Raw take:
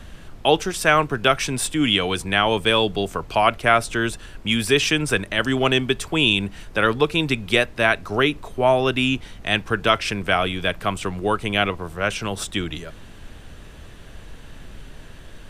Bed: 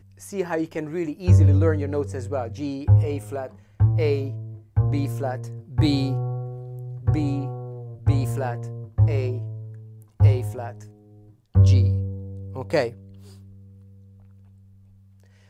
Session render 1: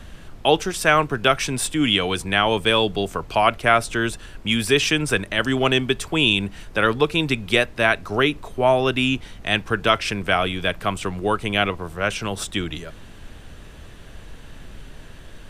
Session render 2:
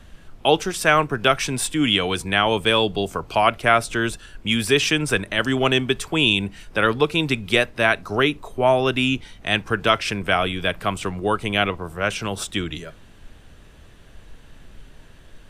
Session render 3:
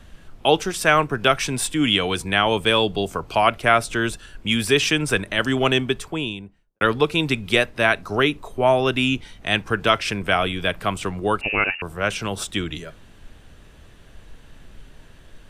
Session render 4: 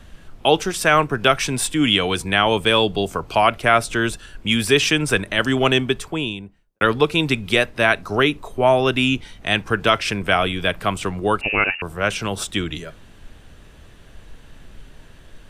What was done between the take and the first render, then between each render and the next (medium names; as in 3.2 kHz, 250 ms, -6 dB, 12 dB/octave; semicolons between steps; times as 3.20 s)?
no audible change
noise print and reduce 6 dB
5.68–6.81 s: studio fade out; 11.41–11.82 s: frequency inversion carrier 2.8 kHz
trim +2 dB; peak limiter -3 dBFS, peak gain reduction 2.5 dB